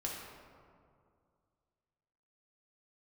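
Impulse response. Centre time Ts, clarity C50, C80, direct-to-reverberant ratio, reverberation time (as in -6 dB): 90 ms, 0.5 dB, 2.5 dB, -3.0 dB, 2.2 s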